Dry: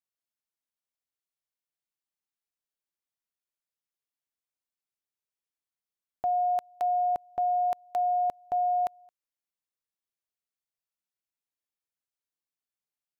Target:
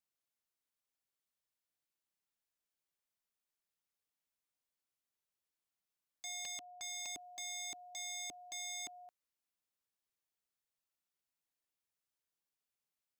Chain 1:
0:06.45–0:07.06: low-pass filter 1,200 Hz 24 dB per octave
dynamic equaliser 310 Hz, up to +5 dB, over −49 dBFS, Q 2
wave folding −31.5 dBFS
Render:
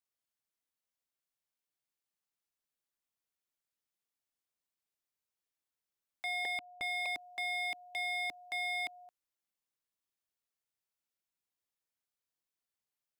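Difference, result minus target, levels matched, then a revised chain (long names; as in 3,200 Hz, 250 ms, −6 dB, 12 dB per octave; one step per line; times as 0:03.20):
wave folding: distortion −7 dB
0:06.45–0:07.06: low-pass filter 1,200 Hz 24 dB per octave
dynamic equaliser 310 Hz, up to +5 dB, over −49 dBFS, Q 2
wave folding −39 dBFS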